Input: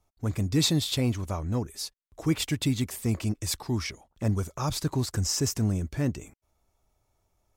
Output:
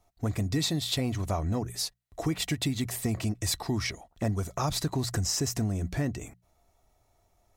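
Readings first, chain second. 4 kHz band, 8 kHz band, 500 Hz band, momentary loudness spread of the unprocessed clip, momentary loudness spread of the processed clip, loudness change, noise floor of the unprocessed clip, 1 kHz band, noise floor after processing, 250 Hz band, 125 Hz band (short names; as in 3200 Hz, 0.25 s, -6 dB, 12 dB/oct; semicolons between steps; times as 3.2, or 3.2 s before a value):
-1.0 dB, -1.0 dB, -0.5 dB, 8 LU, 6 LU, -1.5 dB, -76 dBFS, +2.0 dB, -70 dBFS, -2.5 dB, -2.5 dB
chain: notches 60/120/180 Hz; compressor 5:1, threshold -30 dBFS, peak gain reduction 10 dB; small resonant body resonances 700/1900/4000 Hz, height 9 dB; gain +4 dB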